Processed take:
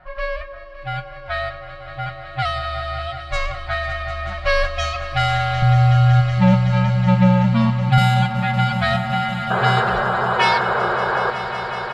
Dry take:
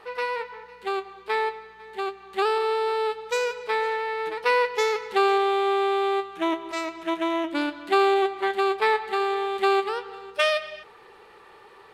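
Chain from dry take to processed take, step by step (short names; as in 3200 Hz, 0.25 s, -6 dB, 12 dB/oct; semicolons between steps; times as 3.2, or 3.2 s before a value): band inversion scrambler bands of 500 Hz; 5.62–7.98 RIAA curve playback; low-pass opened by the level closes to 1400 Hz, open at -12.5 dBFS; high shelf 4100 Hz +11.5 dB; comb 5.5 ms, depth 67%; 9.5–11.31 painted sound noise 350–1700 Hz -21 dBFS; swelling echo 0.187 s, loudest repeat 5, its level -15 dB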